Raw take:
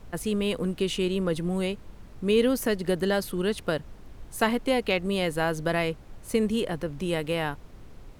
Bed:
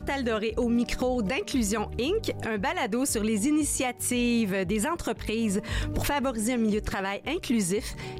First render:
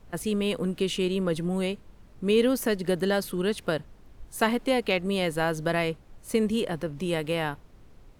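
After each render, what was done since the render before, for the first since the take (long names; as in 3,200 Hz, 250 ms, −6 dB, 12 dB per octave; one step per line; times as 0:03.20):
noise reduction from a noise print 6 dB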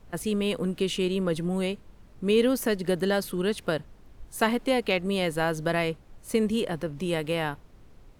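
no processing that can be heard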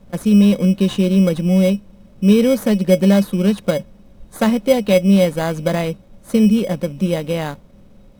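hollow resonant body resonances 200/550/3,800 Hz, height 15 dB, ringing for 90 ms
in parallel at −4.5 dB: decimation without filtering 16×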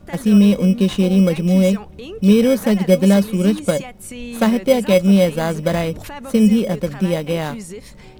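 mix in bed −6 dB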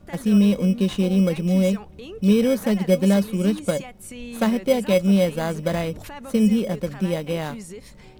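level −5 dB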